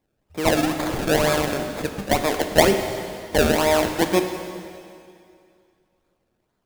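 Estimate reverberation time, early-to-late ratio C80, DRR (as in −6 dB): 2.4 s, 8.0 dB, 5.5 dB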